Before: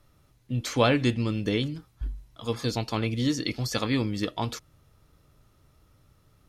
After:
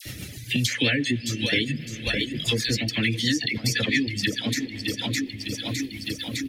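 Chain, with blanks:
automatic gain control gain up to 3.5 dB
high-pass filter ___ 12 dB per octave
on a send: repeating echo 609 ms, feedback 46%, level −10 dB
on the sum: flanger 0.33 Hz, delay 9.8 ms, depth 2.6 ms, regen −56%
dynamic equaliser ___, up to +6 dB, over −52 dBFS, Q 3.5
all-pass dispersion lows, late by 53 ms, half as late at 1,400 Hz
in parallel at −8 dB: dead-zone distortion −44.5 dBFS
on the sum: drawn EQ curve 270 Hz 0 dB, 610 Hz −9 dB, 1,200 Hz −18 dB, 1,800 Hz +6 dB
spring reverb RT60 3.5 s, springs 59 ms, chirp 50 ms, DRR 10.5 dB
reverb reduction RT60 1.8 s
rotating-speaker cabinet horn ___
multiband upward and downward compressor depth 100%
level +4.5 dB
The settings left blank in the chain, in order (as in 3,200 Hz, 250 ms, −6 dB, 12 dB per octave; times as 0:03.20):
84 Hz, 1,800 Hz, 7.5 Hz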